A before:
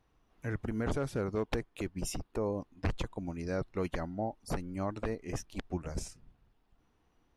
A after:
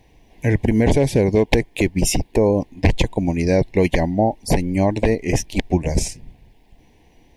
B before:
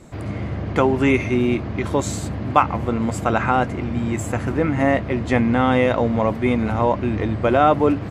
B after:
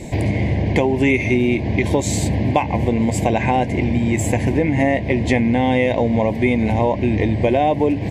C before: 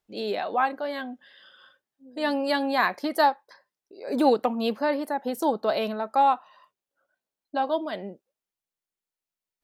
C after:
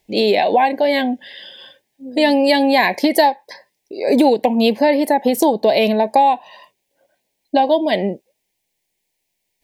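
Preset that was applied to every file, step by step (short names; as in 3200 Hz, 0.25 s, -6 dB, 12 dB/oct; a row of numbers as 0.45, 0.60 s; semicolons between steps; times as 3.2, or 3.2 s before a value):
Butterworth band-stop 1300 Hz, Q 1.5; compressor 4:1, threshold -29 dBFS; bell 2200 Hz +5 dB 0.36 oct; normalise peaks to -1.5 dBFS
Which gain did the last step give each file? +18.5, +13.0, +17.5 dB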